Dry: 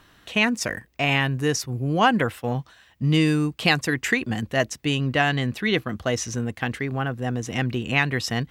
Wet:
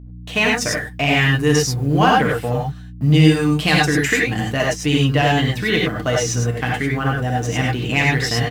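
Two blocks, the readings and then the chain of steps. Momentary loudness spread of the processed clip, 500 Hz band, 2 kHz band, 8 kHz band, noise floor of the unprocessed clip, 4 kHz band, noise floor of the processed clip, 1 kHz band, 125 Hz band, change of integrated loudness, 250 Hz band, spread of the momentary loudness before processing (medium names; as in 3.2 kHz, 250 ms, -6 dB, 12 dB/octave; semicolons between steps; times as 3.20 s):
7 LU, +6.5 dB, +5.0 dB, +7.0 dB, -56 dBFS, +5.5 dB, -35 dBFS, +6.0 dB, +8.0 dB, +6.0 dB, +5.5 dB, 8 LU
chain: companding laws mixed up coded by A; in parallel at -1 dB: compression, threshold -29 dBFS, peak gain reduction 15 dB; on the sum: comb 6.7 ms, depth 49%; gate -45 dBFS, range -38 dB; hum 60 Hz, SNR 18 dB; saturation -6.5 dBFS, distortion -23 dB; gated-style reverb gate 120 ms rising, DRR -1.5 dB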